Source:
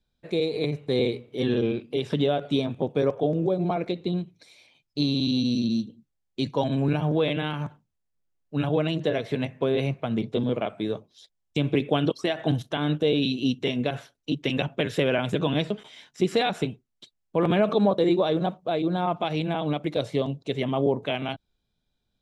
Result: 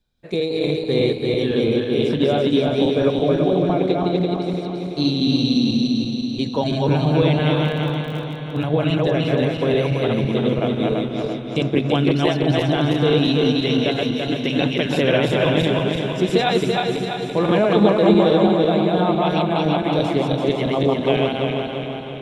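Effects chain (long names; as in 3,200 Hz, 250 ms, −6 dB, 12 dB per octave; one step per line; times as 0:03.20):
feedback delay that plays each chunk backwards 168 ms, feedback 73%, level −1 dB
feedback delay with all-pass diffusion 477 ms, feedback 51%, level −13 dB
0:07.64–0:08.68: surface crackle 42 per second −33 dBFS
level +3 dB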